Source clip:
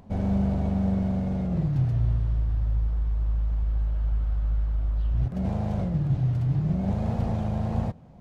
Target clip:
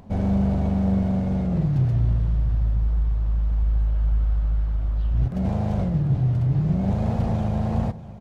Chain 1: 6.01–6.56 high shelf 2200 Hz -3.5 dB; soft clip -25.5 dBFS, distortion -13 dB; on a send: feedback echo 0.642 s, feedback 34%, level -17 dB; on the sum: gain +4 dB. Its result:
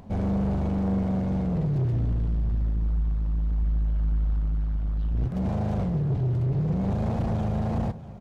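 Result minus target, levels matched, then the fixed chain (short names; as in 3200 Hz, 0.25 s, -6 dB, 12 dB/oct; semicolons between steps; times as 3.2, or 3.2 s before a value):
soft clip: distortion +15 dB
6.01–6.56 high shelf 2200 Hz -3.5 dB; soft clip -14.5 dBFS, distortion -27 dB; on a send: feedback echo 0.642 s, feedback 34%, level -17 dB; on the sum: gain +4 dB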